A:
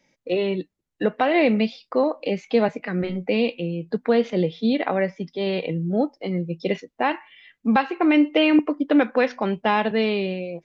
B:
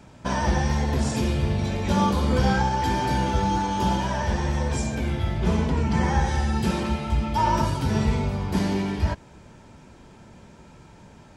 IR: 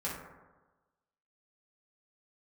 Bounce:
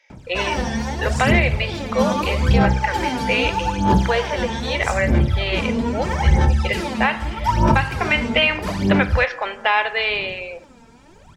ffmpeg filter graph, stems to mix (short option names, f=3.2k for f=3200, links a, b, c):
-filter_complex "[0:a]highpass=f=450:w=0.5412,highpass=f=450:w=1.3066,equalizer=f=2.2k:w=0.5:g=13.5,volume=-4dB,asplit=2[a][b];[b]volume=-14dB[c];[1:a]aphaser=in_gain=1:out_gain=1:delay=4.4:decay=0.76:speed=0.79:type=sinusoidal,adelay=100,volume=-1.5dB[d];[2:a]atrim=start_sample=2205[e];[c][e]afir=irnorm=-1:irlink=0[f];[a][d][f]amix=inputs=3:normalize=0,alimiter=limit=-5dB:level=0:latency=1:release=403"